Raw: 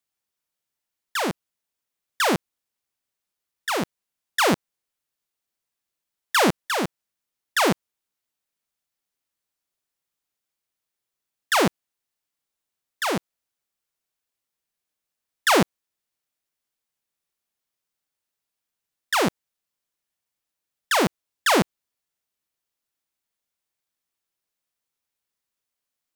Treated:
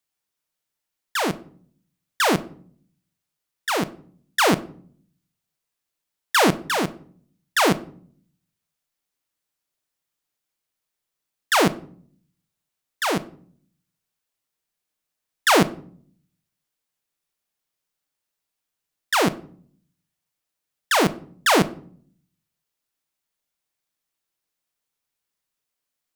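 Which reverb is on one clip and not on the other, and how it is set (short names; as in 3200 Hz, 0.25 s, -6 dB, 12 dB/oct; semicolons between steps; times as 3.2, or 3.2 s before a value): shoebox room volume 660 m³, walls furnished, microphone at 0.49 m; gain +1.5 dB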